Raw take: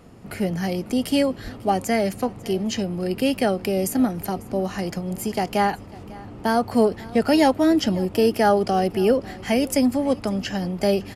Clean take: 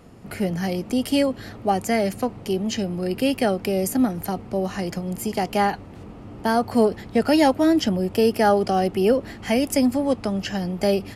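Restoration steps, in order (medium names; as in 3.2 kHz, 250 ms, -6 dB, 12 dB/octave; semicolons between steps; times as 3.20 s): 1.43–1.55 s: high-pass 140 Hz 24 dB/octave; inverse comb 547 ms -21 dB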